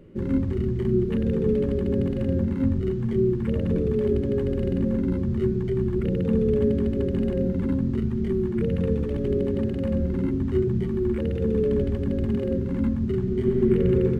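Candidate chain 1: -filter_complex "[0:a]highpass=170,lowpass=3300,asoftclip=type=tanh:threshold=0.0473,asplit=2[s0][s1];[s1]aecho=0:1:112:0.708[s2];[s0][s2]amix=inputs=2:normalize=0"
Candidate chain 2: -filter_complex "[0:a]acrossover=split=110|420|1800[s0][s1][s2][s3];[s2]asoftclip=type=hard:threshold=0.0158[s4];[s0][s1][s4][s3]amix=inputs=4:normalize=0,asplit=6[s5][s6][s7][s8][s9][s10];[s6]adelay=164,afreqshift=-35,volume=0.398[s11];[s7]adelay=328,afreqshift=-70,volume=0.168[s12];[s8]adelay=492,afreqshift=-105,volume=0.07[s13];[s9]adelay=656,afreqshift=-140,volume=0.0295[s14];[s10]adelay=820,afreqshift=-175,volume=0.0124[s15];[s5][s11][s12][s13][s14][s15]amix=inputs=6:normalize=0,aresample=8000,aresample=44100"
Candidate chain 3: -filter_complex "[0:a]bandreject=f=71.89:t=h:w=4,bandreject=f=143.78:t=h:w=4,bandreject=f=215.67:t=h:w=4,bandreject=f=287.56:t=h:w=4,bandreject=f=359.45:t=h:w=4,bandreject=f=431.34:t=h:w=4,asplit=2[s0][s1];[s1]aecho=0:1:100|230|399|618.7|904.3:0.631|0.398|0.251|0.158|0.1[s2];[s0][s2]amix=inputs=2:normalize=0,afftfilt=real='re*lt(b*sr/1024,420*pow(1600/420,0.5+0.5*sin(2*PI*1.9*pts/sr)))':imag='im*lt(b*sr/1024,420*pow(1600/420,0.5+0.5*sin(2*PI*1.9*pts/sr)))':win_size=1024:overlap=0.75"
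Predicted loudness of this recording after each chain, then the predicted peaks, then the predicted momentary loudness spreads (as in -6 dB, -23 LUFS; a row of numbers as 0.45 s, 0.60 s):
-29.0 LUFS, -24.5 LUFS, -23.5 LUFS; -22.0 dBFS, -9.0 dBFS, -8.5 dBFS; 2 LU, 3 LU, 3 LU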